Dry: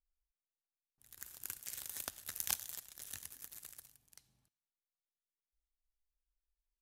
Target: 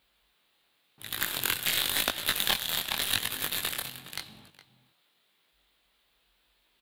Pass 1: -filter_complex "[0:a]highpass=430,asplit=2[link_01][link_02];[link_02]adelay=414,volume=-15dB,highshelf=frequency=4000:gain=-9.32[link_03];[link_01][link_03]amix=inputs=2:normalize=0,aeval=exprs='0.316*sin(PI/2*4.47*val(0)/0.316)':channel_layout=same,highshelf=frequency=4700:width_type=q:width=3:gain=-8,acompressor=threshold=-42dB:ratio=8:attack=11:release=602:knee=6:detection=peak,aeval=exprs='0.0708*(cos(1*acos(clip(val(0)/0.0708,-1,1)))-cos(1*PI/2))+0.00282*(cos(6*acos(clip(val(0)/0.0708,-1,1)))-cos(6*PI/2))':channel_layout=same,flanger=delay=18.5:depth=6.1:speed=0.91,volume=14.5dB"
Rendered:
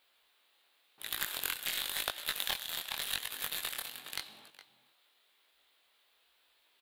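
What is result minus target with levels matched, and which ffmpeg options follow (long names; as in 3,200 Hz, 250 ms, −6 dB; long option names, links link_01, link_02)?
downward compressor: peak gain reduction +8 dB; 125 Hz band −7.0 dB
-filter_complex "[0:a]highpass=130,asplit=2[link_01][link_02];[link_02]adelay=414,volume=-15dB,highshelf=frequency=4000:gain=-9.32[link_03];[link_01][link_03]amix=inputs=2:normalize=0,aeval=exprs='0.316*sin(PI/2*4.47*val(0)/0.316)':channel_layout=same,highshelf=frequency=4700:width_type=q:width=3:gain=-8,acompressor=threshold=-32.5dB:ratio=8:attack=11:release=602:knee=6:detection=peak,aeval=exprs='0.0708*(cos(1*acos(clip(val(0)/0.0708,-1,1)))-cos(1*PI/2))+0.00282*(cos(6*acos(clip(val(0)/0.0708,-1,1)))-cos(6*PI/2))':channel_layout=same,flanger=delay=18.5:depth=6.1:speed=0.91,volume=14.5dB"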